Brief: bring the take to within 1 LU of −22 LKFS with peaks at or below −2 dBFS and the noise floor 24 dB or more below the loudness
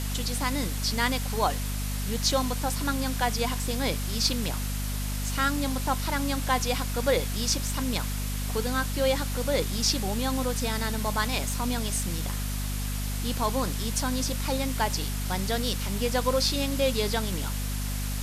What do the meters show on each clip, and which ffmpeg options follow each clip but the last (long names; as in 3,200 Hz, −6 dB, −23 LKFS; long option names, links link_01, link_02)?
mains hum 50 Hz; hum harmonics up to 250 Hz; level of the hum −28 dBFS; background noise floor −30 dBFS; target noise floor −52 dBFS; integrated loudness −28.0 LKFS; sample peak −11.5 dBFS; target loudness −22.0 LKFS
→ -af "bandreject=frequency=50:width_type=h:width=4,bandreject=frequency=100:width_type=h:width=4,bandreject=frequency=150:width_type=h:width=4,bandreject=frequency=200:width_type=h:width=4,bandreject=frequency=250:width_type=h:width=4"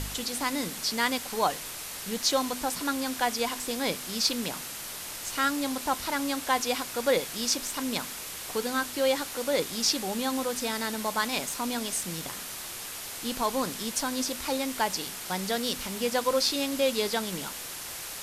mains hum none found; background noise floor −39 dBFS; target noise floor −53 dBFS
→ -af "afftdn=noise_reduction=14:noise_floor=-39"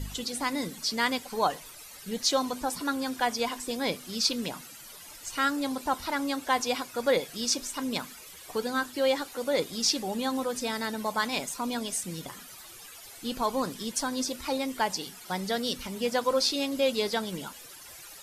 background noise floor −47 dBFS; target noise floor −54 dBFS
→ -af "afftdn=noise_reduction=7:noise_floor=-47"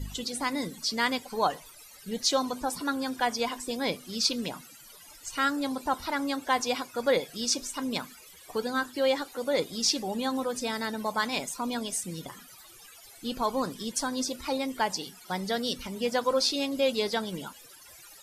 background noise floor −51 dBFS; target noise floor −54 dBFS
→ -af "afftdn=noise_reduction=6:noise_floor=-51"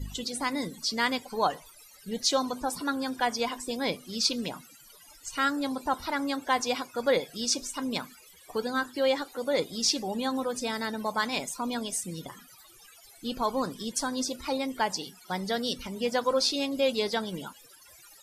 background noise floor −54 dBFS; integrated loudness −29.5 LKFS; sample peak −12.0 dBFS; target loudness −22.0 LKFS
→ -af "volume=7.5dB"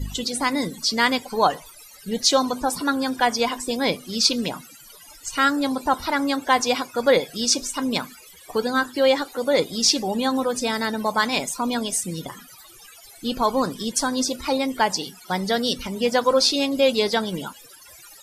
integrated loudness −22.0 LKFS; sample peak −4.5 dBFS; background noise floor −47 dBFS